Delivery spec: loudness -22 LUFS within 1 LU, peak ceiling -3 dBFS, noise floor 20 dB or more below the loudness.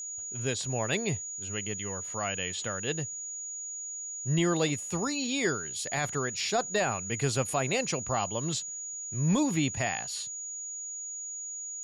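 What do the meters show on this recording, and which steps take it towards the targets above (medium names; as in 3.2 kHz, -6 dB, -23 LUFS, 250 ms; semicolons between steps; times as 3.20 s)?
steady tone 6.8 kHz; tone level -36 dBFS; loudness -31.0 LUFS; peak level -16.5 dBFS; loudness target -22.0 LUFS
-> band-stop 6.8 kHz, Q 30; trim +9 dB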